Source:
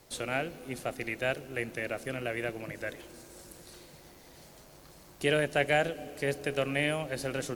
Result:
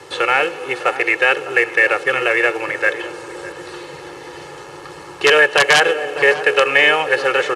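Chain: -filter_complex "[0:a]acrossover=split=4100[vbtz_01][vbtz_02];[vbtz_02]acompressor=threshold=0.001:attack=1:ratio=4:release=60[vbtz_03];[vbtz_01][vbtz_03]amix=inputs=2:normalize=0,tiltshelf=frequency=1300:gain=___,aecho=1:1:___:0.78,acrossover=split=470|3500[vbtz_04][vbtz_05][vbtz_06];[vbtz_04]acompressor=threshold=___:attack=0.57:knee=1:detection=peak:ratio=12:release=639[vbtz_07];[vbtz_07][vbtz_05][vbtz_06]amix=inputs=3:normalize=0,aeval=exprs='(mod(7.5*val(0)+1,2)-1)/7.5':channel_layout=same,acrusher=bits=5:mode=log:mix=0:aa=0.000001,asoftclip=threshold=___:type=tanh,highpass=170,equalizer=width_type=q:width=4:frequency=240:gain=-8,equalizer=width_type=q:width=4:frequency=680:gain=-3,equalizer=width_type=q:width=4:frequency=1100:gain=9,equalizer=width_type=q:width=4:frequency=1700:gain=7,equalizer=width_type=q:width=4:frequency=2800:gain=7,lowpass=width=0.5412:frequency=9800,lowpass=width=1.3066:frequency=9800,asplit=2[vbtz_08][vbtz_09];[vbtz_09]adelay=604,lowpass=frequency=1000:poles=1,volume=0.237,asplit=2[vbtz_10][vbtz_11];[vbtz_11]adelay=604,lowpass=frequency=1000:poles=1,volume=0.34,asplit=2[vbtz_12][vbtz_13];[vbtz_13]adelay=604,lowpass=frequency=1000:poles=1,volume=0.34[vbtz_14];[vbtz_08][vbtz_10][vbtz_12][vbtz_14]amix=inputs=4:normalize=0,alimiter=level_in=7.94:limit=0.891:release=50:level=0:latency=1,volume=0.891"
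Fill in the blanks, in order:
3.5, 2.3, 0.00562, 0.112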